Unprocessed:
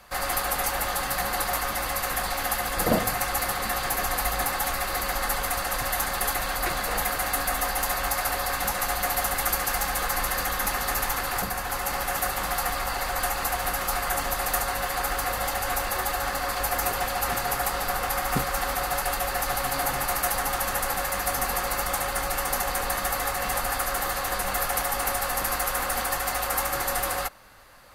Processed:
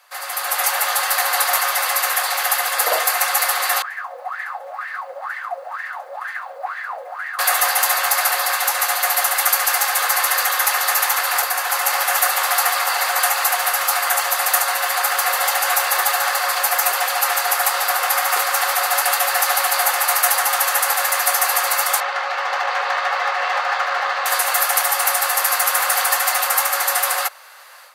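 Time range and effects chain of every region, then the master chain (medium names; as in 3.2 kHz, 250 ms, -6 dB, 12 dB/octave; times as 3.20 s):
3.82–7.39 s: bass shelf 390 Hz +9.5 dB + wah-wah 2.1 Hz 510–1900 Hz, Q 10 + word length cut 12-bit, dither none
22.00–24.26 s: median filter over 5 samples + distance through air 150 m
whole clip: Bessel high-pass 860 Hz, order 8; level rider gain up to 12.5 dB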